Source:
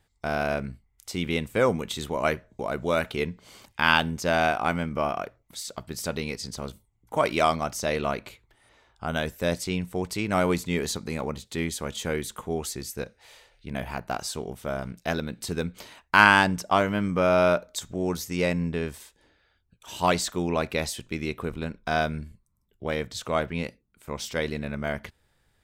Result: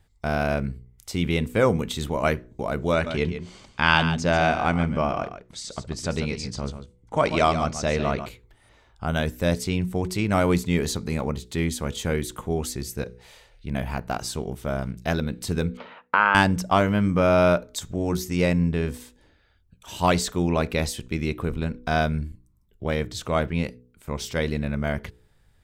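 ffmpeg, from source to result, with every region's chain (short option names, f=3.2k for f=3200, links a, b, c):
-filter_complex "[0:a]asettb=1/sr,asplit=3[a][b][c];[a]atrim=end=2.924[d];[b]atrim=start=2.92:end=8.26,asetpts=PTS-STARTPTS,afade=t=in:d=0.004:c=qsin,afade=t=out:st=5.336:d=0.004:c=qsin,lowpass=f=8.1k:w=0.5412,lowpass=f=8.1k:w=1.3066,aecho=1:1:141:0.316,atrim=end_sample=235494[e];[c]atrim=start=8.256[f];[d][e]acrossfade=d=0.004:c1=hsin:c2=qsin[g];[g][f]acrossfade=d=0.004:c1=qsin:c2=hsin,asettb=1/sr,asplit=3[h][i][j];[h]atrim=end=15.774[k];[i]atrim=start=15.77:end=16.35,asetpts=PTS-STARTPTS,afade=t=in:d=0.004:c=qsin,afade=t=out:st=0.576:d=0.004:c=qsin,acompressor=threshold=-24dB:ratio=2.5:attack=3.2:release=140:knee=1:detection=peak,highpass=240,equalizer=f=320:t=q:w=4:g=-8,equalizer=f=500:t=q:w=4:g=10,equalizer=f=900:t=q:w=4:g=4,equalizer=f=1.3k:t=q:w=4:g=10,lowpass=f=3.1k:w=0.5412,lowpass=f=3.1k:w=1.3066[l];[j]atrim=start=16.346[m];[k][l]acrossfade=d=0.004:c1=hsin:c2=qsin[n];[n][m]acrossfade=d=0.004:c1=qsin:c2=hsin,lowshelf=f=190:g=9.5,bandreject=f=61.3:t=h:w=4,bandreject=f=122.6:t=h:w=4,bandreject=f=183.9:t=h:w=4,bandreject=f=245.2:t=h:w=4,bandreject=f=306.5:t=h:w=4,bandreject=f=367.8:t=h:w=4,bandreject=f=429.1:t=h:w=4,bandreject=f=490.4:t=h:w=4,volume=1dB"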